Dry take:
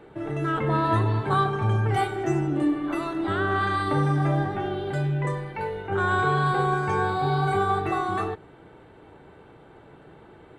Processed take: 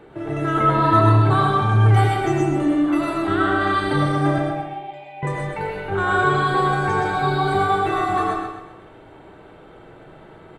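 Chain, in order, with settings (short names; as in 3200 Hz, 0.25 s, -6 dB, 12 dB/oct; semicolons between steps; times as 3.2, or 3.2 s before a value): 4.38–5.23 double band-pass 1400 Hz, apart 1.5 oct; feedback echo 0.128 s, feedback 40%, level -7.5 dB; reverb RT60 0.45 s, pre-delay 65 ms, DRR 0 dB; gain +2.5 dB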